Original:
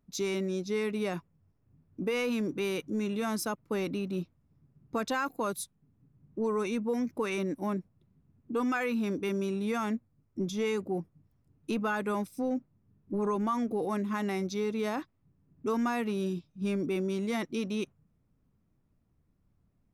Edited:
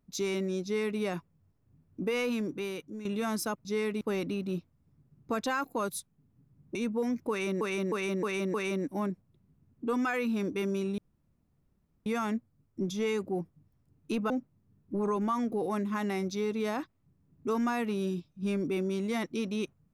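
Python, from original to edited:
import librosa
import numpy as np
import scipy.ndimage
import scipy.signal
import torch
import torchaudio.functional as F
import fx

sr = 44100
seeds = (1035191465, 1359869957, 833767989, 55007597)

y = fx.edit(x, sr, fx.duplicate(start_s=0.64, length_s=0.36, to_s=3.65),
    fx.fade_out_to(start_s=2.25, length_s=0.8, floor_db=-11.5),
    fx.cut(start_s=6.39, length_s=0.27),
    fx.repeat(start_s=7.21, length_s=0.31, count=5),
    fx.insert_room_tone(at_s=9.65, length_s=1.08),
    fx.cut(start_s=11.89, length_s=0.6), tone=tone)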